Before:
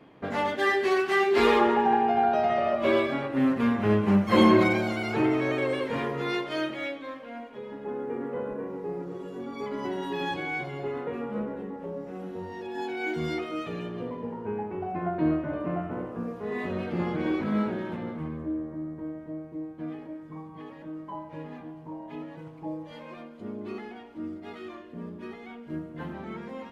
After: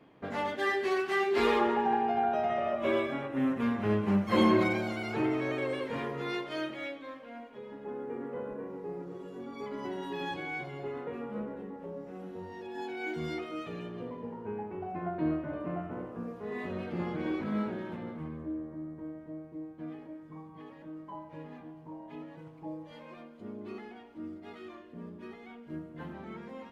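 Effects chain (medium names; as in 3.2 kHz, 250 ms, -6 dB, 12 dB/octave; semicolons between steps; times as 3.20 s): 2.19–3.62 s: peaking EQ 4.5 kHz -11 dB 0.25 oct; trim -5.5 dB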